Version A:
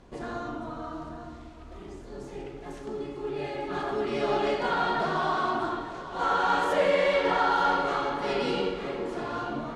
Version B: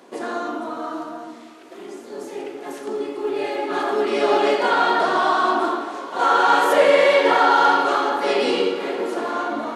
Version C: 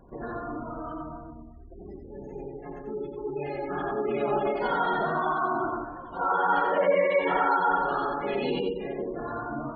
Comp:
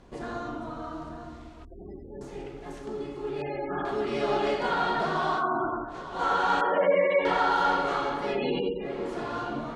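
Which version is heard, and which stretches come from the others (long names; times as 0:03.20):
A
0:01.65–0:02.21: punch in from C
0:03.42–0:03.85: punch in from C
0:05.40–0:05.92: punch in from C, crossfade 0.10 s
0:06.61–0:07.25: punch in from C
0:08.29–0:08.93: punch in from C, crossfade 0.24 s
not used: B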